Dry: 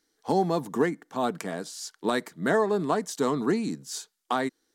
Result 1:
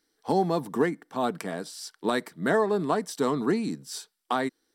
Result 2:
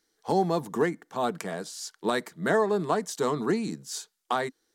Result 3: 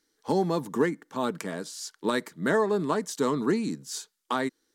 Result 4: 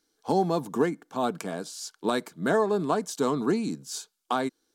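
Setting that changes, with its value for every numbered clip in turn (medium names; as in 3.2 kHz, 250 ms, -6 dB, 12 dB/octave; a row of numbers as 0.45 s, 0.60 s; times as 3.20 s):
band-stop, frequency: 6.7 kHz, 270 Hz, 720 Hz, 1.9 kHz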